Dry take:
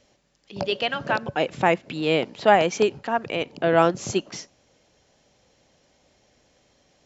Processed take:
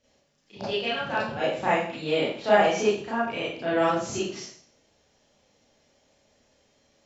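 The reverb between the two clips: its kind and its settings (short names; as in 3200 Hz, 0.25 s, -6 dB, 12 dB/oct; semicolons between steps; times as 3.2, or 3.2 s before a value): Schroeder reverb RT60 0.53 s, combs from 27 ms, DRR -9.5 dB; gain -12.5 dB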